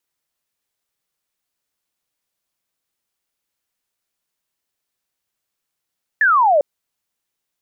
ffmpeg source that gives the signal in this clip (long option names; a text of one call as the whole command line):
ffmpeg -f lavfi -i "aevalsrc='0.299*clip(t/0.002,0,1)*clip((0.4-t)/0.002,0,1)*sin(2*PI*1800*0.4/log(550/1800)*(exp(log(550/1800)*t/0.4)-1))':duration=0.4:sample_rate=44100" out.wav